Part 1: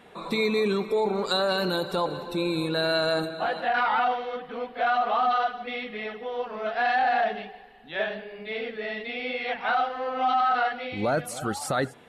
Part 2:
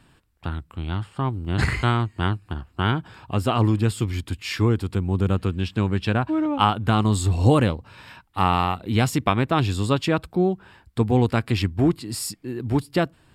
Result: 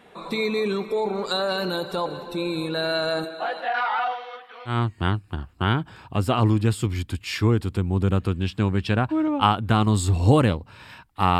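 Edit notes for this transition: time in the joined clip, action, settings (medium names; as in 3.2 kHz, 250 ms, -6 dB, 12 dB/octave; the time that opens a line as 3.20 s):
part 1
3.24–4.79 s: high-pass 250 Hz -> 1.3 kHz
4.72 s: go over to part 2 from 1.90 s, crossfade 0.14 s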